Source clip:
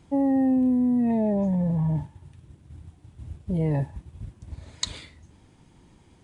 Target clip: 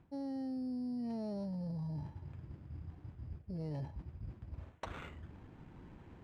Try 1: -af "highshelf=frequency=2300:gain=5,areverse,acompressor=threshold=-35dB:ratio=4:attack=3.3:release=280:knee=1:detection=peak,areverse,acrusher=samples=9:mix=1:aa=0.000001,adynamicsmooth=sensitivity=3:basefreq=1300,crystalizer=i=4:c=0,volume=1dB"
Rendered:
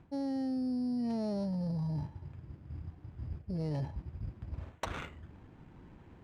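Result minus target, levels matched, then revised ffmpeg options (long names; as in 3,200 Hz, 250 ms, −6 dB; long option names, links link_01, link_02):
downward compressor: peak gain reduction −5.5 dB
-af "highshelf=frequency=2300:gain=5,areverse,acompressor=threshold=-42.5dB:ratio=4:attack=3.3:release=280:knee=1:detection=peak,areverse,acrusher=samples=9:mix=1:aa=0.000001,adynamicsmooth=sensitivity=3:basefreq=1300,crystalizer=i=4:c=0,volume=1dB"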